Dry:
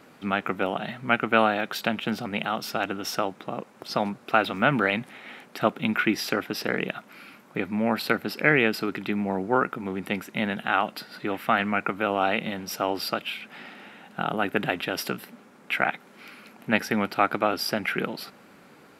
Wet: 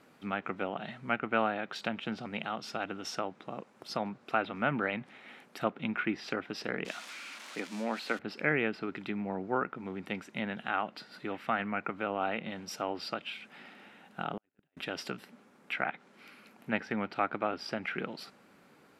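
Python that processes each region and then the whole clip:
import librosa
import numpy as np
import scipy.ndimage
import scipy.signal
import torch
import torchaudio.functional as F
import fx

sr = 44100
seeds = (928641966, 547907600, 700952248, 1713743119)

y = fx.chain(x, sr, fx.crossing_spikes(level_db=-17.5),
    fx.highpass(hz=220.0, slope=24),
    fx.peak_eq(hz=380.0, db=-3.0, octaves=0.31), at=(6.85, 8.19))
y = fx.chain(y, sr, fx.over_compress(threshold_db=-30.0, ratio=-0.5),
    fx.gate_flip(shuts_db=-22.0, range_db=-42), at=(14.37, 14.77))
y = fx.env_lowpass_down(y, sr, base_hz=2600.0, full_db=-21.5)
y = fx.dynamic_eq(y, sr, hz=8300.0, q=0.77, threshold_db=-49.0, ratio=4.0, max_db=4)
y = y * librosa.db_to_amplitude(-8.5)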